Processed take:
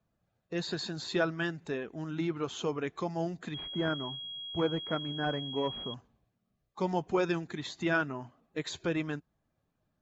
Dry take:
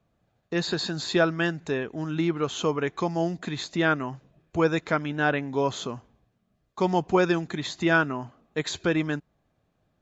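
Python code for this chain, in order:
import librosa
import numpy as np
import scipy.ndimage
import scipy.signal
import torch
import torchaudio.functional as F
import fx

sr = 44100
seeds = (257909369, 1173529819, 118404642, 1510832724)

y = fx.spec_quant(x, sr, step_db=15)
y = fx.pwm(y, sr, carrier_hz=3300.0, at=(3.54, 5.94))
y = y * 10.0 ** (-7.0 / 20.0)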